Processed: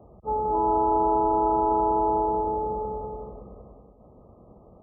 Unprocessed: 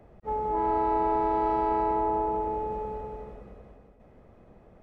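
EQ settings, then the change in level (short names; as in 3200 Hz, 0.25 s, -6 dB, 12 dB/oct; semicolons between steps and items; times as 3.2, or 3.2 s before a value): HPF 40 Hz; brick-wall FIR low-pass 1300 Hz; +3.5 dB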